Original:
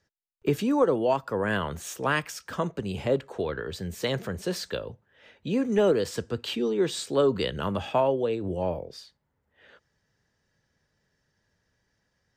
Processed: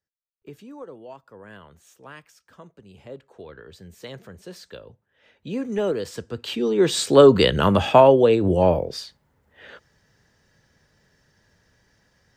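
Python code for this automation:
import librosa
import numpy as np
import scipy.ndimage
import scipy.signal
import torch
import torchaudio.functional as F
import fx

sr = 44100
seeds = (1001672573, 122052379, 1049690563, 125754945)

y = fx.gain(x, sr, db=fx.line((2.8, -17.0), (3.62, -10.0), (4.56, -10.0), (5.56, -2.0), (6.27, -2.0), (7.09, 11.0)))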